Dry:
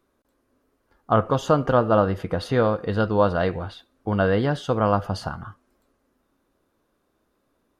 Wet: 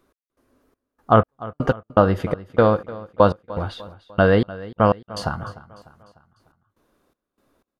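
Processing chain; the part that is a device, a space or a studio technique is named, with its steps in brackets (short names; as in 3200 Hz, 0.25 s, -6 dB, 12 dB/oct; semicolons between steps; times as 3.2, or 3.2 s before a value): trance gate with a delay (step gate "x..xxx..xx..." 122 bpm -60 dB; feedback echo 0.299 s, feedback 50%, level -18.5 dB); gain +5 dB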